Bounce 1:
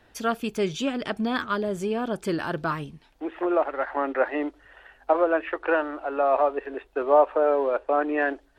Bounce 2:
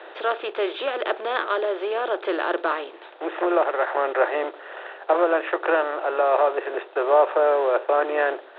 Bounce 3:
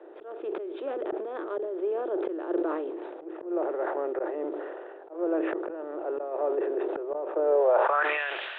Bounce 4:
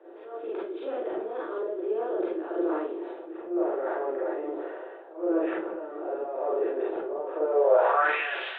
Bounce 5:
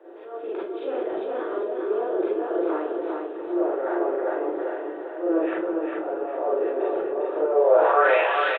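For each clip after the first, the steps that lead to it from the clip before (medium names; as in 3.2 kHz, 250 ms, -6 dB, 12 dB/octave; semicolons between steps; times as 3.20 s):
spectral levelling over time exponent 0.6; Chebyshev band-pass 340–3800 Hz, order 5
band-pass sweep 320 Hz -> 2.7 kHz, 7.44–8.21 s; slow attack 262 ms; decay stretcher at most 28 dB/s; trim +2 dB
Schroeder reverb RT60 0.33 s, combs from 33 ms, DRR -5.5 dB; trim -6 dB
feedback delay 402 ms, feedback 35%, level -4 dB; trim +3 dB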